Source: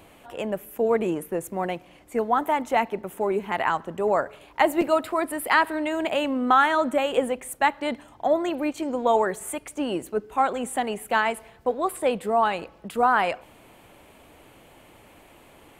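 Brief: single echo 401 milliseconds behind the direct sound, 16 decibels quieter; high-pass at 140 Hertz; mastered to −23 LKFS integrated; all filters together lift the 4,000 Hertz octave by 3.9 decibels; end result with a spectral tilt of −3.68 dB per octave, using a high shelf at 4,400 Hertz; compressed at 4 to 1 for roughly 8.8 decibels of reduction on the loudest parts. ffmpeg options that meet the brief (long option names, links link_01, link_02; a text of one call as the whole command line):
ffmpeg -i in.wav -af "highpass=140,equalizer=frequency=4000:width_type=o:gain=7.5,highshelf=frequency=4400:gain=-3.5,acompressor=threshold=-25dB:ratio=4,aecho=1:1:401:0.158,volume=7dB" out.wav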